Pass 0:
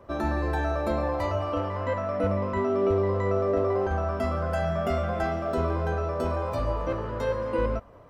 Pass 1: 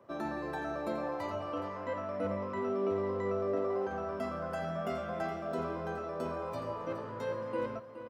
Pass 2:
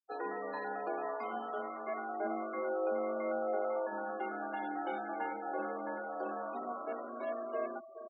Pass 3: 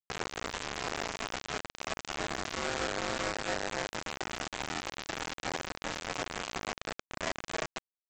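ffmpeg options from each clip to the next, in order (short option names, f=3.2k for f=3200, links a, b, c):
-af "highpass=f=120:w=0.5412,highpass=f=120:w=1.3066,aecho=1:1:419:0.266,volume=-8dB"
-af "afreqshift=130,afftfilt=real='re*gte(hypot(re,im),0.01)':imag='im*gte(hypot(re,im),0.01)':win_size=1024:overlap=0.75,volume=-2dB"
-af "alimiter=level_in=9dB:limit=-24dB:level=0:latency=1:release=253,volume=-9dB,aresample=16000,acrusher=bits=5:mix=0:aa=0.000001,aresample=44100,volume=6.5dB"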